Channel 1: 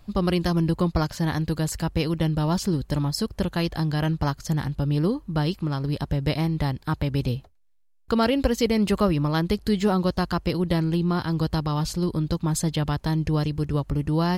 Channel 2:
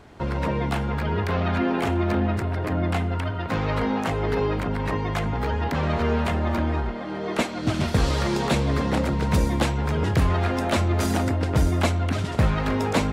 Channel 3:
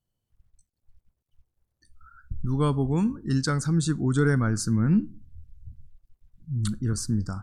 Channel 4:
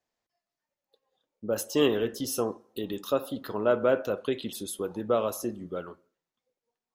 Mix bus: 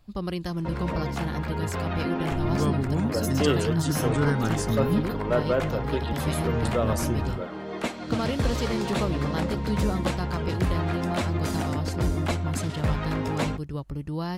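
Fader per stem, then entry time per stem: -8.0, -5.5, -3.5, -1.0 dB; 0.00, 0.45, 0.00, 1.65 s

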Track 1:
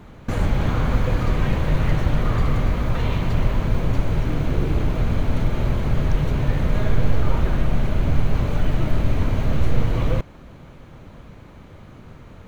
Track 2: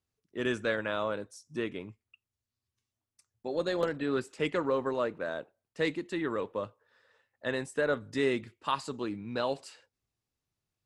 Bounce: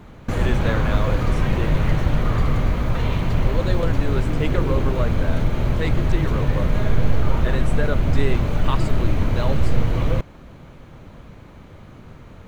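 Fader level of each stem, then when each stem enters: +0.5, +2.5 dB; 0.00, 0.00 s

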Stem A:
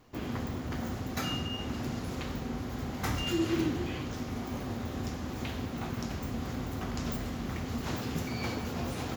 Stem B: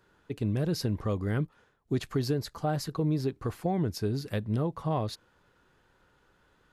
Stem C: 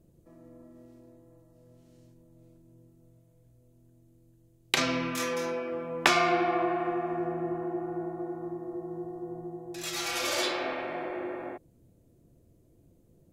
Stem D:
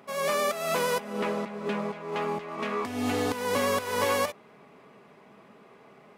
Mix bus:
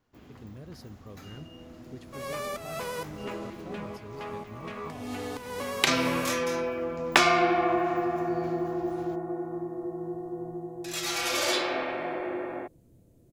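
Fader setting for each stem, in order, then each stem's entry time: -15.5, -16.5, +2.5, -8.0 dB; 0.00, 0.00, 1.10, 2.05 s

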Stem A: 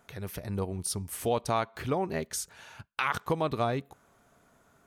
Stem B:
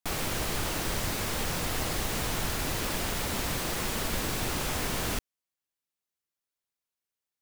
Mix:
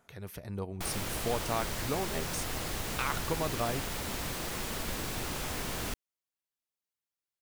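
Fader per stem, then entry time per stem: -5.0, -5.0 dB; 0.00, 0.75 s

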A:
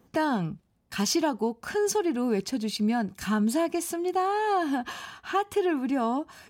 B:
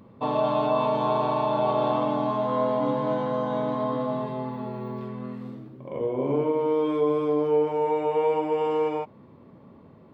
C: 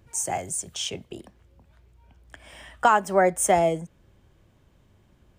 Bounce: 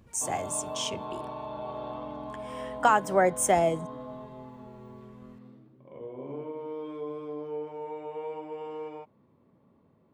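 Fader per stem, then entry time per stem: off, -13.5 dB, -3.0 dB; off, 0.00 s, 0.00 s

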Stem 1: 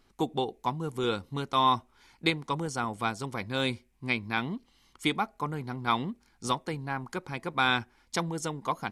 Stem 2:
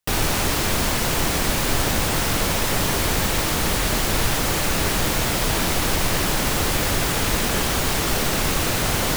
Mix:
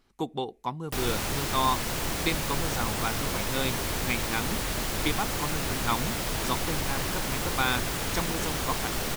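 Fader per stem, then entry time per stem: -2.0, -9.0 dB; 0.00, 0.85 s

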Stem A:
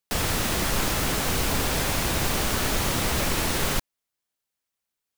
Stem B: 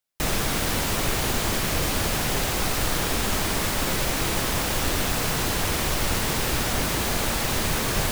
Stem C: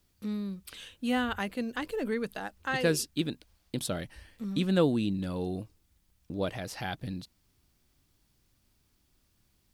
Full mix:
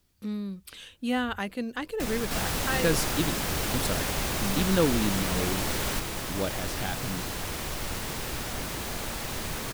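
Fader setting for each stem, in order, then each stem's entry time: -6.0, -9.0, +1.0 dB; 2.20, 1.80, 0.00 s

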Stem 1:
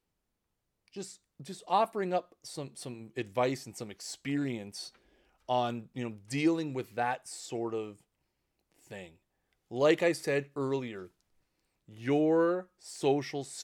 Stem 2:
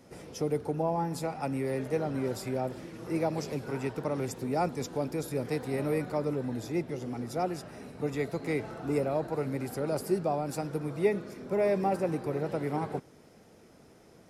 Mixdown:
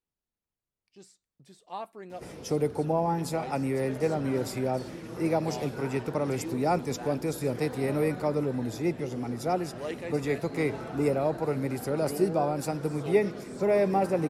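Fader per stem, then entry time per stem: -11.0, +3.0 dB; 0.00, 2.10 s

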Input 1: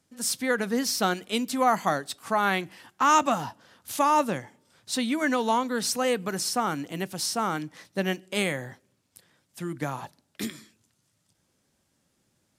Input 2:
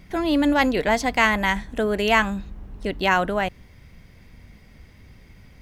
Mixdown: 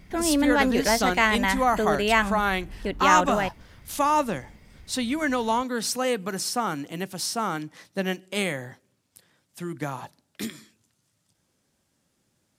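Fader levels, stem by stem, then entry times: 0.0, -2.5 dB; 0.00, 0.00 s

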